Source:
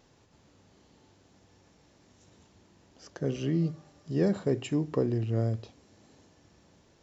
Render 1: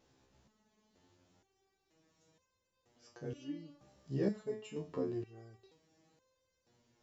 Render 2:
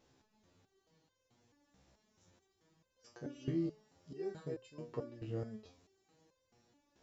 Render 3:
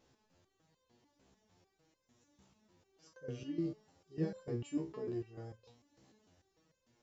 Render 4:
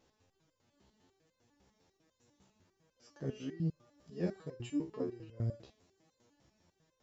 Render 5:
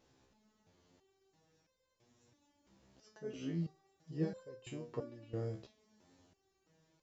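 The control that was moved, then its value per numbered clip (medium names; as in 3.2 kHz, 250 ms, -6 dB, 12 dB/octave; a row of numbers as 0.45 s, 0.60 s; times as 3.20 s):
resonator arpeggio, rate: 2.1 Hz, 4.6 Hz, 6.7 Hz, 10 Hz, 3 Hz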